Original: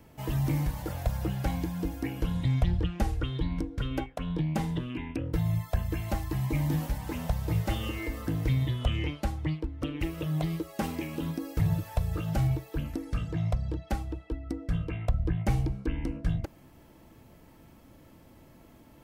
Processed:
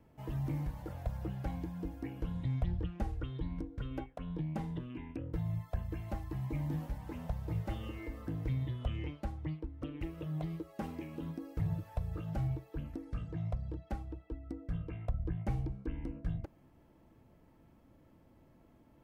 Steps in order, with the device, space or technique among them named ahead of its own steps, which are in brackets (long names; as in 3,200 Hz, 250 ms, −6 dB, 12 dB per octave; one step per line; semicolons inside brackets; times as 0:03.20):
through cloth (high-shelf EQ 2,500 Hz −11 dB)
level −8 dB